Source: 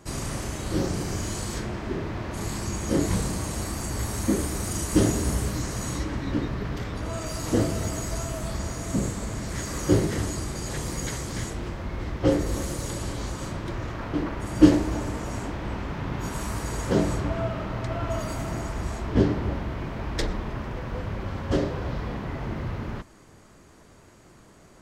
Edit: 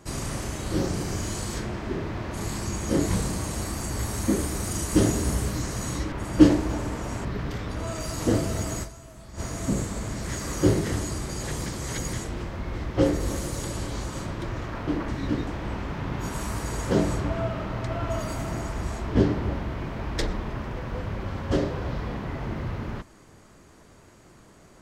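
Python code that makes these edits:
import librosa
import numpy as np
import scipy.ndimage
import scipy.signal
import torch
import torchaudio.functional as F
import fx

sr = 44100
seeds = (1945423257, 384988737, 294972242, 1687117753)

y = fx.edit(x, sr, fx.swap(start_s=6.12, length_s=0.39, other_s=14.34, other_length_s=1.13),
    fx.fade_down_up(start_s=8.09, length_s=0.57, db=-14.5, fade_s=0.25, curve='exp'),
    fx.reverse_span(start_s=10.92, length_s=0.47), tone=tone)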